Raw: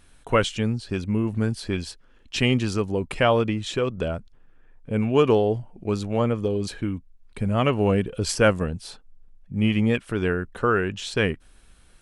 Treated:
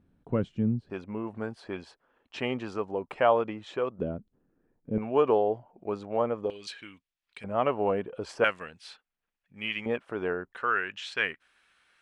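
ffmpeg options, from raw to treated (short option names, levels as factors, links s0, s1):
-af "asetnsamples=n=441:p=0,asendcmd='0.9 bandpass f 810;3.99 bandpass f 270;4.98 bandpass f 750;6.5 bandpass f 2900;7.44 bandpass f 780;8.44 bandpass f 2200;9.86 bandpass f 760;10.52 bandpass f 1900',bandpass=f=190:t=q:w=1.2:csg=0"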